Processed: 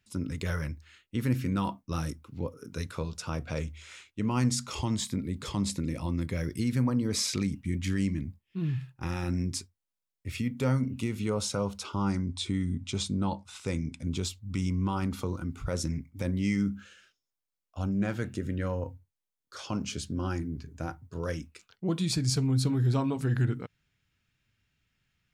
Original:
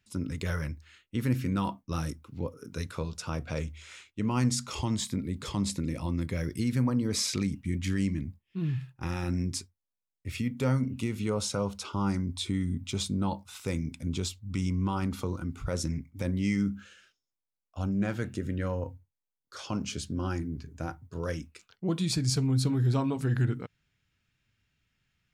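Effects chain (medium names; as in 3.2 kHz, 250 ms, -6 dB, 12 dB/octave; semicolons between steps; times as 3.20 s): 11.96–14.07 s: low-pass 9.6 kHz 24 dB/octave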